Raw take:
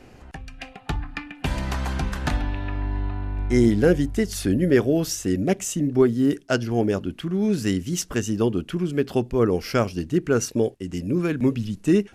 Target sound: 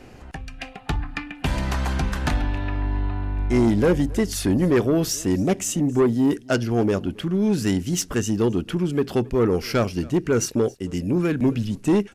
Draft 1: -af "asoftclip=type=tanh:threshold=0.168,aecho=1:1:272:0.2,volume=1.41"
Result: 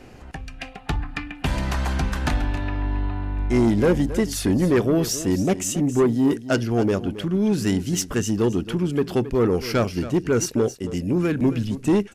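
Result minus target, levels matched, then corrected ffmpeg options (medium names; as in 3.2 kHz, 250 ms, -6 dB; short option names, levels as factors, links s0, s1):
echo-to-direct +10 dB
-af "asoftclip=type=tanh:threshold=0.168,aecho=1:1:272:0.0631,volume=1.41"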